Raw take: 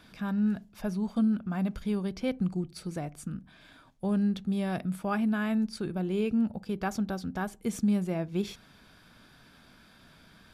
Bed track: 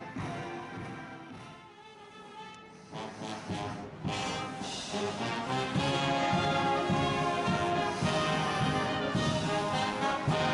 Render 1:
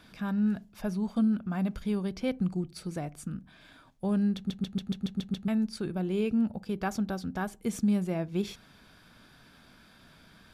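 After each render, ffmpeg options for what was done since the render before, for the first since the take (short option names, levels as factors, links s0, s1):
-filter_complex "[0:a]asplit=9[s0][s1][s2][s3][s4][s5][s6][s7][s8];[s0]atrim=end=4.502[s9];[s1]atrim=start=4.358:end=4.502[s10];[s2]atrim=start=4.358:end=4.502[s11];[s3]atrim=start=4.358:end=4.502[s12];[s4]atrim=start=4.358:end=4.502[s13];[s5]atrim=start=4.358:end=4.502[s14];[s6]atrim=start=4.358:end=4.502[s15];[s7]atrim=start=4.358:end=4.502[s16];[s8]atrim=start=5.478[s17];[s9][s10]acrossfade=d=0.004:c1=hsin:c2=hsin[s18];[s18][s11]acrossfade=d=0.004:c1=hsin:c2=hsin[s19];[s19][s12]acrossfade=d=0.004:c1=hsin:c2=hsin[s20];[s20][s13]acrossfade=d=0.004:c1=hsin:c2=hsin[s21];[s21][s14]acrossfade=d=0.004:c1=hsin:c2=hsin[s22];[s22][s15]acrossfade=d=0.004:c1=hsin:c2=hsin[s23];[s23][s16]acrossfade=d=0.004:c1=hsin:c2=hsin[s24];[s24][s17]acrossfade=d=0.004:c1=hsin:c2=hsin"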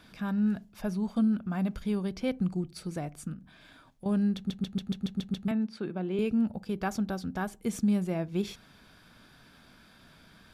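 -filter_complex "[0:a]asettb=1/sr,asplit=3[s0][s1][s2];[s0]atrim=end=3.334[s3];[s1]atrim=start=3.33:end=4.06,asetpts=PTS-STARTPTS,afade=t=in:d=0.004:c=qsin,afade=t=out:st=0.726:d=0.004:c=qsin,acompressor=threshold=0.01:ratio=6:attack=3.2:release=140:knee=1:detection=peak[s4];[s2]atrim=start=4.056[s5];[s3][s4]acrossfade=d=0.004:c1=hsin:c2=qsin[s6];[s6][s5]acrossfade=d=0.004:c1=qsin:c2=hsin,asettb=1/sr,asplit=3[s7][s8][s9];[s7]atrim=end=5.514[s10];[s8]atrim=start=5.51:end=6.19,asetpts=PTS-STARTPTS,afade=t=in:d=0.004:c=qsin,afade=t=out:st=0.676:d=0.004:c=qsin,acrossover=split=150 4100:gain=0.0708 1 0.158[s11][s12][s13];[s11][s12][s13]amix=inputs=3:normalize=0[s14];[s9]atrim=start=6.186[s15];[s10][s14]acrossfade=d=0.004:c1=hsin:c2=qsin[s16];[s16][s15]acrossfade=d=0.004:c1=qsin:c2=hsin"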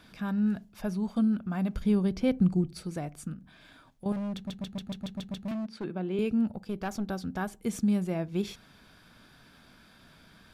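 -filter_complex "[0:a]asettb=1/sr,asplit=3[s0][s1][s2];[s0]atrim=end=1.754[s3];[s1]atrim=start=1.75:end=2.82,asetpts=PTS-STARTPTS,afade=t=in:d=0.004:c=qsin,afade=t=out:st=1.066:d=0.004:c=qsin,lowshelf=f=480:g=6.5[s4];[s2]atrim=start=2.816[s5];[s3][s4]acrossfade=d=0.004:c1=hsin:c2=qsin[s6];[s6][s5]acrossfade=d=0.004:c1=qsin:c2=hsin,asettb=1/sr,asplit=3[s7][s8][s9];[s7]atrim=end=4.124[s10];[s8]atrim=start=4.12:end=5.84,asetpts=PTS-STARTPTS,afade=t=in:d=0.004:c=qsin,afade=t=out:st=1.716:d=0.004:c=qsin,asoftclip=type=hard:threshold=0.0266[s11];[s9]atrim=start=5.836[s12];[s10][s11]acrossfade=d=0.004:c1=hsin:c2=qsin[s13];[s13][s12]acrossfade=d=0.004:c1=qsin:c2=hsin,asettb=1/sr,asplit=3[s14][s15][s16];[s14]atrim=end=6.524[s17];[s15]atrim=start=6.52:end=7.09,asetpts=PTS-STARTPTS,afade=t=in:d=0.004:c=qsin,afade=t=out:st=0.566:d=0.004:c=qsin,aeval=exprs='(tanh(17.8*val(0)+0.45)-tanh(0.45))/17.8':c=same[s18];[s16]atrim=start=7.086[s19];[s17][s18]acrossfade=d=0.004:c1=hsin:c2=qsin[s20];[s20][s19]acrossfade=d=0.004:c1=qsin:c2=hsin"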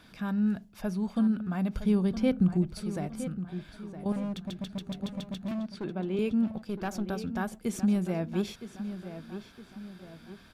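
-filter_complex "[0:a]asplit=2[s0][s1];[s1]adelay=964,lowpass=f=4100:p=1,volume=0.282,asplit=2[s2][s3];[s3]adelay=964,lowpass=f=4100:p=1,volume=0.45,asplit=2[s4][s5];[s5]adelay=964,lowpass=f=4100:p=1,volume=0.45,asplit=2[s6][s7];[s7]adelay=964,lowpass=f=4100:p=1,volume=0.45,asplit=2[s8][s9];[s9]adelay=964,lowpass=f=4100:p=1,volume=0.45[s10];[s0][s2][s4][s6][s8][s10]amix=inputs=6:normalize=0"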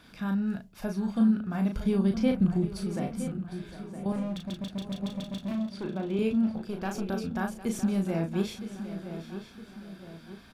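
-filter_complex "[0:a]asplit=2[s0][s1];[s1]adelay=36,volume=0.562[s2];[s0][s2]amix=inputs=2:normalize=0,aecho=1:1:756:0.188"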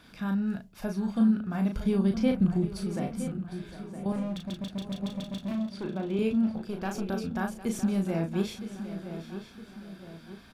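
-af anull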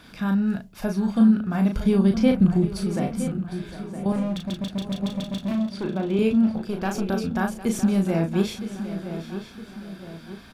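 -af "volume=2.11"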